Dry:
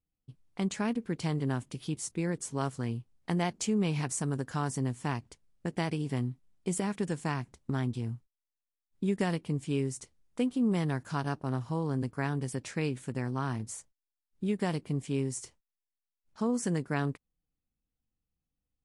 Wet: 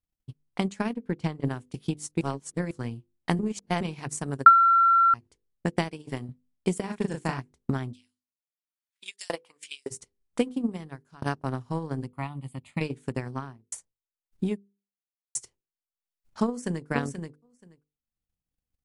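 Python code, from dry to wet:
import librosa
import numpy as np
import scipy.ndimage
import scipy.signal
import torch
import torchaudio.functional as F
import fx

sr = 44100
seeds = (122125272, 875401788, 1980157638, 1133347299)

y = fx.high_shelf(x, sr, hz=4800.0, db=-10.5, at=(0.94, 1.45))
y = fx.low_shelf(y, sr, hz=170.0, db=-8.5, at=(5.88, 6.29))
y = fx.doubler(y, sr, ms=37.0, db=-3, at=(6.87, 7.39), fade=0.02)
y = fx.filter_lfo_highpass(y, sr, shape='saw_up', hz=fx.line((7.93, 0.59), (9.9, 2.2)), low_hz=490.0, high_hz=6200.0, q=1.6, at=(7.93, 9.9), fade=0.02)
y = fx.fixed_phaser(y, sr, hz=1600.0, stages=6, at=(12.07, 12.81))
y = fx.studio_fade_out(y, sr, start_s=13.31, length_s=0.41)
y = fx.echo_throw(y, sr, start_s=16.46, length_s=0.41, ms=480, feedback_pct=10, wet_db=-3.5)
y = fx.edit(y, sr, fx.reverse_span(start_s=2.21, length_s=0.5),
    fx.reverse_span(start_s=3.39, length_s=0.42),
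    fx.bleep(start_s=4.46, length_s=0.68, hz=1360.0, db=-13.5),
    fx.fade_out_to(start_s=10.45, length_s=0.77, floor_db=-21.0),
    fx.silence(start_s=14.58, length_s=0.77), tone=tone)
y = fx.hum_notches(y, sr, base_hz=50, count=10)
y = fx.transient(y, sr, attack_db=12, sustain_db=-8)
y = y * 10.0 ** (-2.5 / 20.0)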